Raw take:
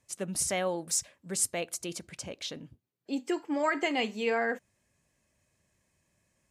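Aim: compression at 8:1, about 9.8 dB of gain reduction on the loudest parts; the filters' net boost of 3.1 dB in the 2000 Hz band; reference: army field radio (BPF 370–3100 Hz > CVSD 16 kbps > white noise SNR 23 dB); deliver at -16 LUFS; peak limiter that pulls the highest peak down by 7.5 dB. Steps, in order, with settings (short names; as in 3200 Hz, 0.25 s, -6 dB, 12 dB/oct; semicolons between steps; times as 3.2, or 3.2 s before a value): bell 2000 Hz +4.5 dB; compressor 8:1, threshold -33 dBFS; limiter -30 dBFS; BPF 370–3100 Hz; CVSD 16 kbps; white noise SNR 23 dB; gain +28 dB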